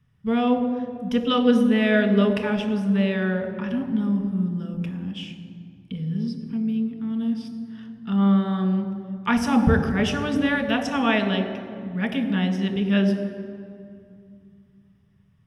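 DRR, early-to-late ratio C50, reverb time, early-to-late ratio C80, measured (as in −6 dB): 4.0 dB, 8.0 dB, 2.3 s, 9.0 dB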